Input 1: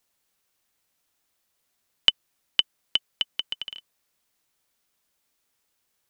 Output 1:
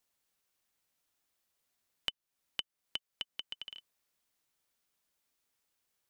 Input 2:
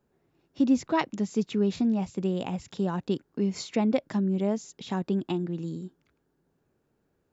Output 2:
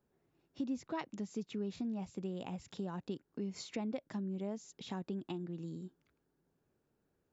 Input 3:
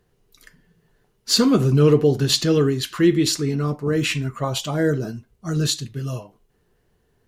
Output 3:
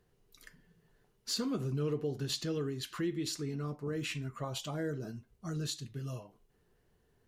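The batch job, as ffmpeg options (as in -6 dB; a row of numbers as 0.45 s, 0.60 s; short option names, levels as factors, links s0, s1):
-af "acompressor=threshold=0.0178:ratio=2,volume=0.473"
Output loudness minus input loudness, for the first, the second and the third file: -16.0 LU, -13.0 LU, -17.0 LU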